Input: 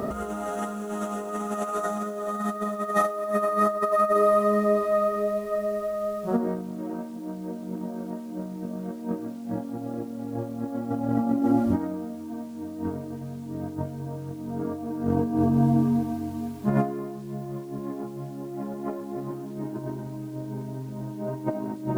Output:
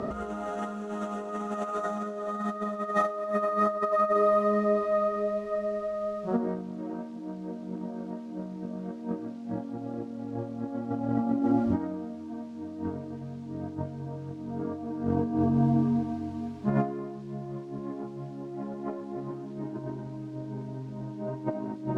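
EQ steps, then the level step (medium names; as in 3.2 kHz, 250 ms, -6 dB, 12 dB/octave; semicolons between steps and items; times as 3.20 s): low-pass 5.1 kHz 12 dB/octave; -3.0 dB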